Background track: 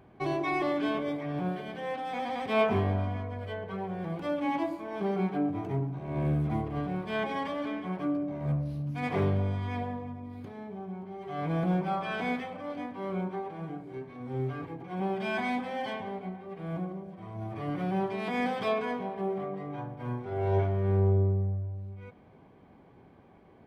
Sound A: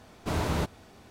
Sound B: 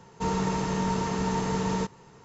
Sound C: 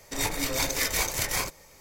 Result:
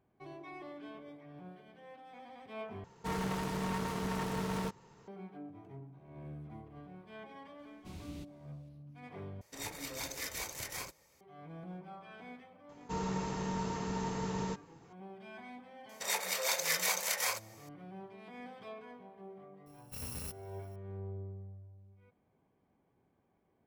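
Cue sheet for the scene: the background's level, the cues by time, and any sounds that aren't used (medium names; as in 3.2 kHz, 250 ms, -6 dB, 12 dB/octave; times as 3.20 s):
background track -18.5 dB
2.84 s: replace with B -7.5 dB + self-modulated delay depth 0.36 ms
7.59 s: add A -18 dB + high-order bell 870 Hz -14 dB 2.3 oct
9.41 s: replace with C -13.5 dB + high-pass 61 Hz
12.69 s: add B -9 dB
15.89 s: add C -4 dB + Chebyshev high-pass 490 Hz, order 4
19.66 s: add A -14.5 dB + bit-reversed sample order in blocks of 128 samples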